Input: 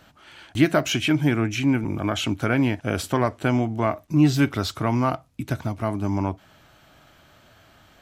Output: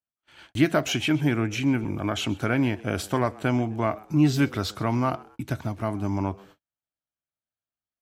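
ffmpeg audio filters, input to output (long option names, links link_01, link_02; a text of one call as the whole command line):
ffmpeg -i in.wav -filter_complex "[0:a]asplit=3[link_01][link_02][link_03];[link_02]adelay=129,afreqshift=100,volume=-22.5dB[link_04];[link_03]adelay=258,afreqshift=200,volume=-31.6dB[link_05];[link_01][link_04][link_05]amix=inputs=3:normalize=0,agate=range=-45dB:threshold=-46dB:ratio=16:detection=peak,volume=-2.5dB" out.wav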